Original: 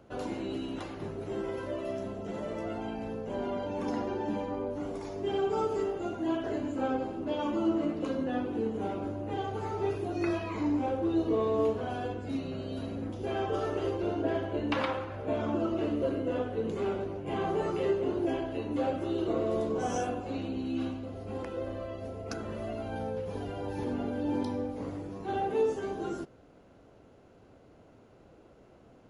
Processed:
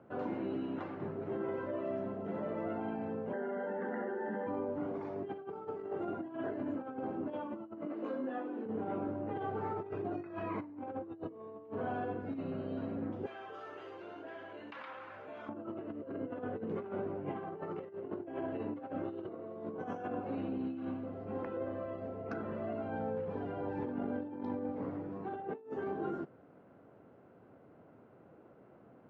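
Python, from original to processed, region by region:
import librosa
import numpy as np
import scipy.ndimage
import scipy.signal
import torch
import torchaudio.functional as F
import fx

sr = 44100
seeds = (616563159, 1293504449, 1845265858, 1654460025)

y = fx.chain(x, sr, fx.cabinet(low_hz=210.0, low_slope=24, high_hz=2500.0, hz=(220.0, 380.0, 660.0, 1900.0), db=(4, 9, -10, 9)),
    fx.fixed_phaser(hz=1600.0, stages=8),
    fx.env_flatten(amount_pct=100), at=(3.33, 4.47))
y = fx.chain(y, sr, fx.highpass(hz=240.0, slope=24),
    fx.high_shelf(hz=7400.0, db=11.5),
    fx.detune_double(cents=18), at=(7.85, 8.66))
y = fx.chain(y, sr, fx.pre_emphasis(coefficient=0.97),
    fx.env_flatten(amount_pct=70), at=(13.26, 15.49))
y = fx.over_compress(y, sr, threshold_db=-34.0, ratio=-0.5)
y = scipy.signal.sosfilt(scipy.signal.cheby1(2, 1.0, [140.0, 1600.0], 'bandpass', fs=sr, output='sos'), y)
y = y * librosa.db_to_amplitude(-3.0)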